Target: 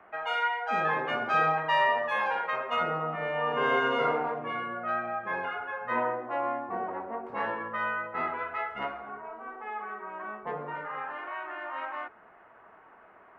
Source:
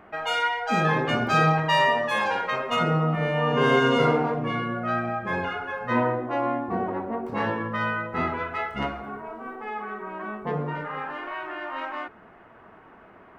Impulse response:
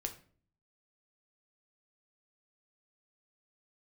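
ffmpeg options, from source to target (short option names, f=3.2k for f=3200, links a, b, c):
-filter_complex "[0:a]acrossover=split=480 2800:gain=0.251 1 0.158[a][b][c];[a][b][c]amix=inputs=3:normalize=0,acrossover=split=140|520|2200[d][e][f][g];[d]acompressor=threshold=-59dB:ratio=6[h];[h][e][f][g]amix=inputs=4:normalize=0,volume=-2.5dB"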